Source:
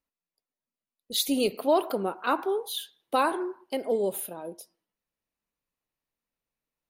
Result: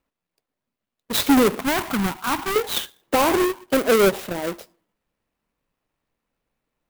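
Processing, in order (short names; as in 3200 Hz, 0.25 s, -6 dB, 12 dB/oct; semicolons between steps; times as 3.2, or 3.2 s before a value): half-waves squared off; 1.59–2.56 EQ curve 230 Hz 0 dB, 480 Hz -20 dB, 880 Hz -4 dB; limiter -19.5 dBFS, peak gain reduction 7 dB; air absorption 80 m; clock jitter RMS 0.038 ms; gain +8.5 dB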